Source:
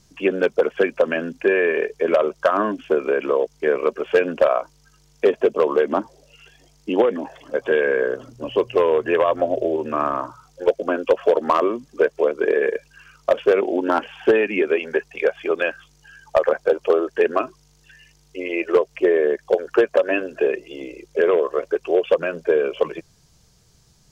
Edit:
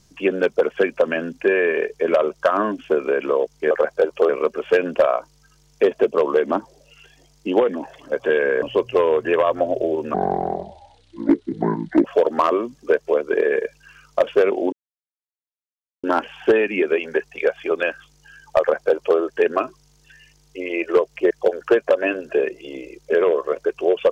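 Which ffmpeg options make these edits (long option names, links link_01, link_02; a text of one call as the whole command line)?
ffmpeg -i in.wav -filter_complex "[0:a]asplit=8[link_01][link_02][link_03][link_04][link_05][link_06][link_07][link_08];[link_01]atrim=end=3.712[link_09];[link_02]atrim=start=16.388:end=16.972[link_10];[link_03]atrim=start=3.708:end=8.042[link_11];[link_04]atrim=start=8.428:end=9.954[link_12];[link_05]atrim=start=9.95:end=11.15,asetpts=PTS-STARTPTS,asetrate=27783,aresample=44100[link_13];[link_06]atrim=start=11.146:end=13.83,asetpts=PTS-STARTPTS,afade=type=out:start_time=2.68:duration=0.004:curve=hsin,apad=pad_dur=1.31[link_14];[link_07]atrim=start=13.83:end=19.102,asetpts=PTS-STARTPTS,afade=type=in:duration=0.004:curve=hsin[link_15];[link_08]atrim=start=19.368[link_16];[link_09][link_10]acrossfade=duration=0.004:curve1=hsin:curve2=hsin[link_17];[link_17][link_11]acrossfade=duration=0.004:curve1=hsin:curve2=hsin[link_18];[link_18][link_12]acrossfade=duration=0.004:curve1=hsin:curve2=hsin[link_19];[link_19][link_13]acrossfade=duration=0.004:curve1=hsin:curve2=hsin[link_20];[link_14][link_15]concat=n=2:v=0:a=1[link_21];[link_20][link_21]acrossfade=duration=0.004:curve1=hsin:curve2=hsin[link_22];[link_22][link_16]acrossfade=duration=0.004:curve1=hsin:curve2=hsin" out.wav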